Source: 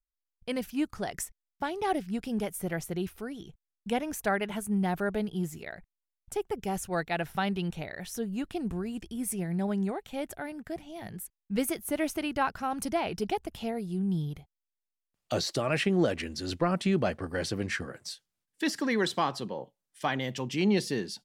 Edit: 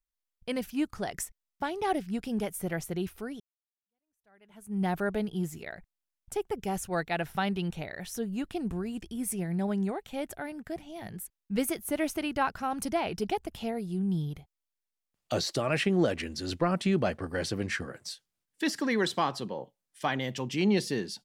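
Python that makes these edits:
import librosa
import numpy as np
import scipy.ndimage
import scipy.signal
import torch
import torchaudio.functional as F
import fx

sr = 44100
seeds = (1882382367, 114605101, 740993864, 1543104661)

y = fx.edit(x, sr, fx.fade_in_span(start_s=3.4, length_s=1.42, curve='exp'), tone=tone)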